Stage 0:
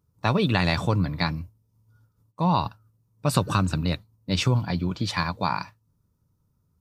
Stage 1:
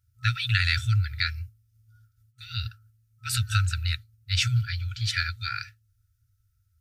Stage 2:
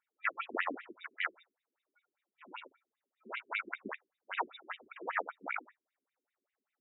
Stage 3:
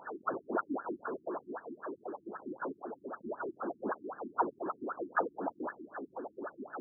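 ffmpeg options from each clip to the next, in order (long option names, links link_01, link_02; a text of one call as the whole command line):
ffmpeg -i in.wav -af "afftfilt=real='re*(1-between(b*sr/4096,120,1300))':imag='im*(1-between(b*sr/4096,120,1300))':win_size=4096:overlap=0.75,volume=2.5dB" out.wav
ffmpeg -i in.wav -filter_complex "[0:a]acrossover=split=100|570|6000[link_01][link_02][link_03][link_04];[link_04]alimiter=level_in=6.5dB:limit=-24dB:level=0:latency=1:release=177,volume=-6.5dB[link_05];[link_01][link_02][link_03][link_05]amix=inputs=4:normalize=0,acrusher=samples=12:mix=1:aa=0.000001,afftfilt=real='re*between(b*sr/1024,280*pow(2800/280,0.5+0.5*sin(2*PI*5.1*pts/sr))/1.41,280*pow(2800/280,0.5+0.5*sin(2*PI*5.1*pts/sr))*1.41)':imag='im*between(b*sr/1024,280*pow(2800/280,0.5+0.5*sin(2*PI*5.1*pts/sr))/1.41,280*pow(2800/280,0.5+0.5*sin(2*PI*5.1*pts/sr))*1.41)':win_size=1024:overlap=0.75" out.wav
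ffmpeg -i in.wav -af "aeval=exprs='val(0)+0.5*0.0224*sgn(val(0))':channel_layout=same,highpass=240,lowpass=2300,afftfilt=real='re*lt(b*sr/1024,350*pow(1800/350,0.5+0.5*sin(2*PI*3.9*pts/sr)))':imag='im*lt(b*sr/1024,350*pow(1800/350,0.5+0.5*sin(2*PI*3.9*pts/sr)))':win_size=1024:overlap=0.75,volume=3dB" out.wav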